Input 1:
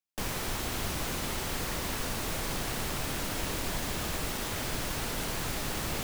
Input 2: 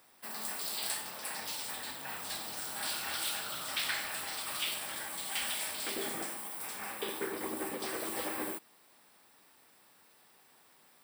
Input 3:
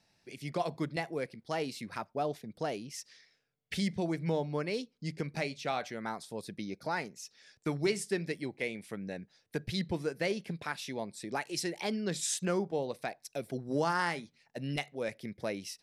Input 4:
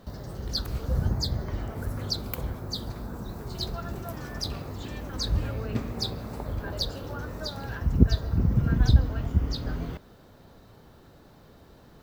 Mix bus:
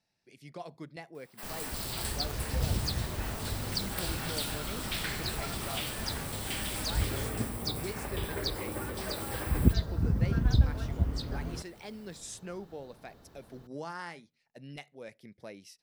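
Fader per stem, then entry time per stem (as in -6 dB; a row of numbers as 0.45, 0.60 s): -10.5, -2.0, -10.0, -4.5 dB; 1.25, 1.15, 0.00, 1.65 s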